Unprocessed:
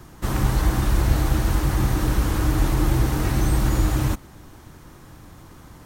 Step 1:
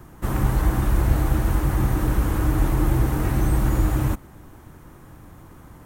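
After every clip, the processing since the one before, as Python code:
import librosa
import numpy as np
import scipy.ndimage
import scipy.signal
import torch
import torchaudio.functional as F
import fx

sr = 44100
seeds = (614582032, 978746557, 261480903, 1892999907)

y = fx.peak_eq(x, sr, hz=4700.0, db=-9.5, octaves=1.5)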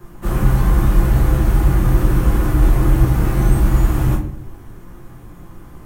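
y = fx.room_shoebox(x, sr, seeds[0], volume_m3=45.0, walls='mixed', distance_m=1.2)
y = F.gain(torch.from_numpy(y), -3.0).numpy()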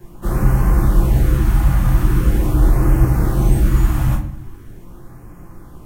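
y = fx.filter_lfo_notch(x, sr, shape='sine', hz=0.42, low_hz=370.0, high_hz=3700.0, q=1.4)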